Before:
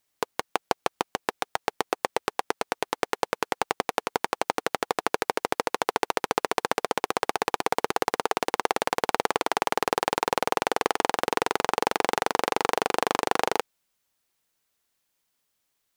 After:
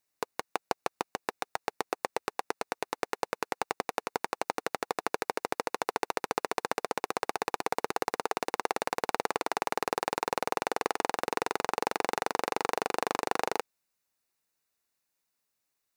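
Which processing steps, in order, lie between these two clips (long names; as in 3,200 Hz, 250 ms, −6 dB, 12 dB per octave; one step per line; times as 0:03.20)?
low-shelf EQ 62 Hz −5 dB
notch filter 3,200 Hz, Q 6.5
level −5.5 dB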